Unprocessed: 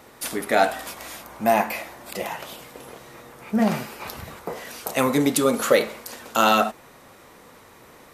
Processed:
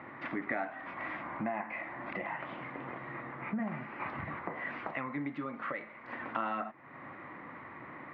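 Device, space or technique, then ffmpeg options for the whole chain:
bass amplifier: -filter_complex "[0:a]highpass=69,lowpass=5.8k,acompressor=threshold=-37dB:ratio=4,highpass=84,equalizer=f=140:t=q:w=4:g=5,equalizer=f=300:t=q:w=4:g=7,equalizer=f=450:t=q:w=4:g=-9,equalizer=f=1.1k:t=q:w=4:g=5,equalizer=f=2k:t=q:w=4:g=9,lowpass=f=2.2k:w=0.5412,lowpass=f=2.2k:w=1.3066,asettb=1/sr,asplit=3[a][b][c];[a]atrim=end=4.914[d];[b]atrim=start=4.91:end=6.04,asetpts=PTS-STARTPTS,afade=t=in:d=0.004:c=qsin,afade=t=out:st=1.126:d=0.004:c=qsin,equalizer=f=310:t=o:w=2.7:g=-5[e];[c]atrim=start=6.036[f];[d][e]acrossfade=d=0.004:c1=hsin:c2=qsin[g];[g][f]acrossfade=d=0.004:c1=qsin:c2=hsin"

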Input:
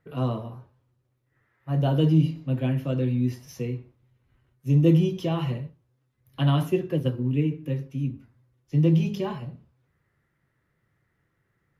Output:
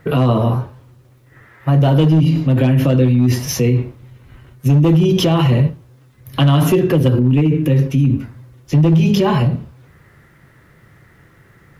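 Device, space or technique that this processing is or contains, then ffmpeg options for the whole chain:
loud club master: -af "acompressor=threshold=-23dB:ratio=3,asoftclip=type=hard:threshold=-20.5dB,alimiter=level_in=30dB:limit=-1dB:release=50:level=0:latency=1,volume=-6dB"

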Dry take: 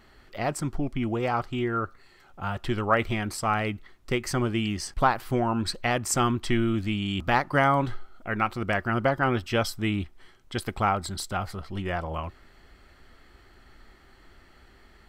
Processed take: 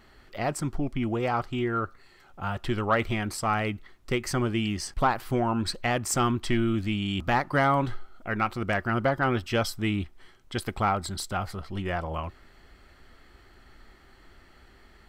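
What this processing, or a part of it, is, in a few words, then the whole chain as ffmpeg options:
saturation between pre-emphasis and de-emphasis: -af "highshelf=f=3.8k:g=8.5,asoftclip=type=tanh:threshold=-12dB,highshelf=f=3.8k:g=-8.5"

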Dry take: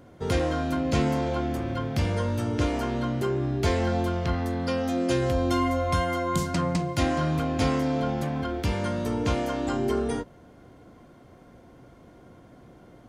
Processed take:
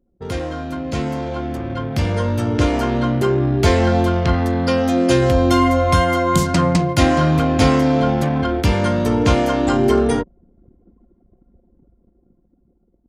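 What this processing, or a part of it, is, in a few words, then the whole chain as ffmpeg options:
voice memo with heavy noise removal: -af "anlmdn=0.631,dynaudnorm=f=450:g=9:m=13dB"

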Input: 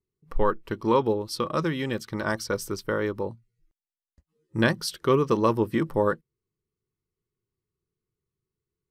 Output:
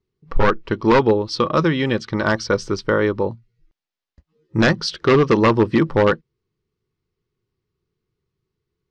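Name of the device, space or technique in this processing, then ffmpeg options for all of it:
synthesiser wavefolder: -af "aeval=exprs='0.158*(abs(mod(val(0)/0.158+3,4)-2)-1)':c=same,lowpass=f=5.4k:w=0.5412,lowpass=f=5.4k:w=1.3066,volume=9dB"

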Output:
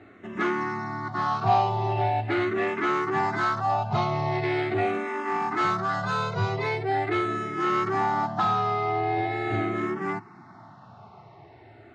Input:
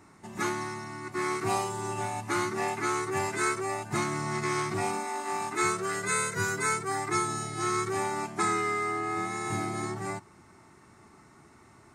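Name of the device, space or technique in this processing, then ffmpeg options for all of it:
barber-pole phaser into a guitar amplifier: -filter_complex "[0:a]asplit=2[a][b];[b]afreqshift=-0.42[c];[a][c]amix=inputs=2:normalize=1,asoftclip=type=tanh:threshold=-27.5dB,highpass=98,equalizer=f=110:t=q:w=4:g=7,equalizer=f=710:t=q:w=4:g=9,equalizer=f=2.3k:t=q:w=4:g=-3,lowpass=f=3.9k:w=0.5412,lowpass=f=3.9k:w=1.3066,volume=8.5dB"

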